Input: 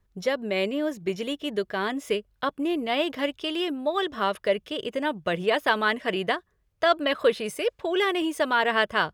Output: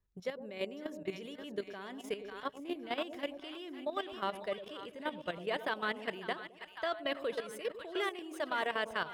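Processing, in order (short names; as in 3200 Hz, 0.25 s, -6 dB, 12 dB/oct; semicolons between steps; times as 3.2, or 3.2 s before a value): split-band echo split 800 Hz, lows 0.107 s, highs 0.545 s, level -8 dB; level quantiser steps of 12 dB; gain -9 dB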